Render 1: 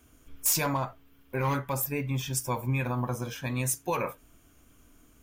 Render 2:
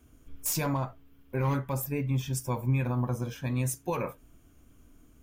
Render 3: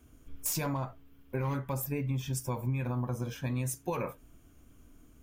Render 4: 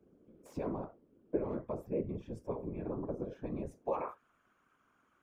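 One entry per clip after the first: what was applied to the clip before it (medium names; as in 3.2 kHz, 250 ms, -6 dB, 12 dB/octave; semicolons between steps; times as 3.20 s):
bass shelf 500 Hz +8.5 dB; trim -5.5 dB
compression 4:1, threshold -29 dBFS, peak gain reduction 6.5 dB
band-pass sweep 400 Hz -> 1.3 kHz, 3.69–4.21 s; whisper effect; trim +4.5 dB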